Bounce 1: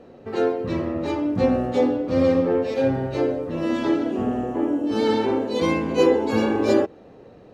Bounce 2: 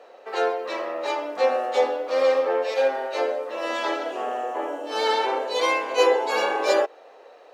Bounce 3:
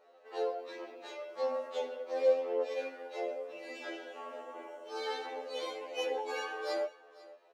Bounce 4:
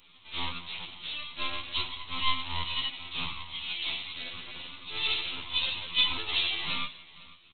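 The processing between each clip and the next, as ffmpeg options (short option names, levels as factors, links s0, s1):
-af "highpass=f=560:w=0.5412,highpass=f=560:w=1.3066,volume=1.78"
-af "flanger=delay=6.7:depth=5.2:regen=53:speed=0.56:shape=triangular,aecho=1:1:496:0.1,afftfilt=real='re*2*eq(mod(b,4),0)':imag='im*2*eq(mod(b,4),0)':win_size=2048:overlap=0.75,volume=0.398"
-af "aecho=1:1:183|366|549:0.0631|0.0322|0.0164,aresample=8000,aeval=exprs='abs(val(0))':c=same,aresample=44100,aexciter=amount=12.9:drive=5:freq=2500"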